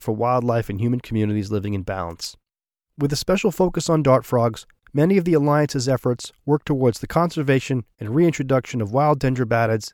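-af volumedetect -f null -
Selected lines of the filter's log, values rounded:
mean_volume: -20.6 dB
max_volume: -4.5 dB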